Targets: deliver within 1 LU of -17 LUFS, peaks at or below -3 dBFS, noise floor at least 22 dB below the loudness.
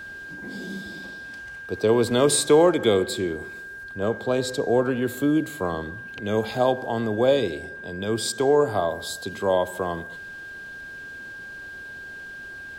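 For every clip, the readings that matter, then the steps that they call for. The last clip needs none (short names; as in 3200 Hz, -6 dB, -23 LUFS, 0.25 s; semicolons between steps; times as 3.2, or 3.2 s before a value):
steady tone 1600 Hz; tone level -36 dBFS; loudness -23.5 LUFS; peak -6.0 dBFS; loudness target -17.0 LUFS
-> notch 1600 Hz, Q 30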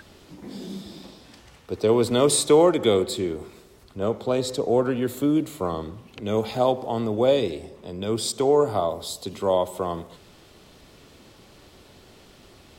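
steady tone none; loudness -23.0 LUFS; peak -6.0 dBFS; loudness target -17.0 LUFS
-> gain +6 dB; limiter -3 dBFS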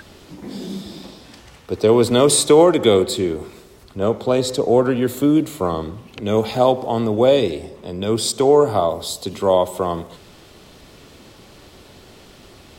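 loudness -17.5 LUFS; peak -3.0 dBFS; noise floor -46 dBFS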